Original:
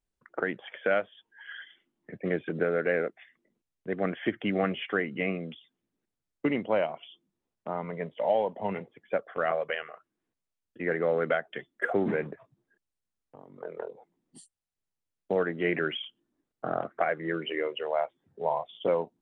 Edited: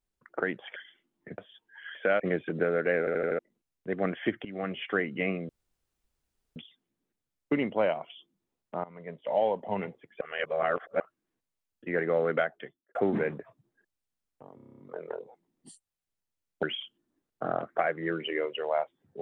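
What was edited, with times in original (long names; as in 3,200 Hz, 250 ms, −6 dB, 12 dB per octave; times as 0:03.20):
0:00.76–0:01.01: swap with 0:01.58–0:02.20
0:02.99: stutter in place 0.08 s, 5 plays
0:04.45–0:04.90: fade in, from −19 dB
0:05.49: splice in room tone 1.07 s
0:07.77–0:08.38: fade in, from −19 dB
0:09.14–0:09.93: reverse
0:11.36–0:11.88: fade out and dull
0:13.48: stutter 0.03 s, 9 plays
0:15.32–0:15.85: remove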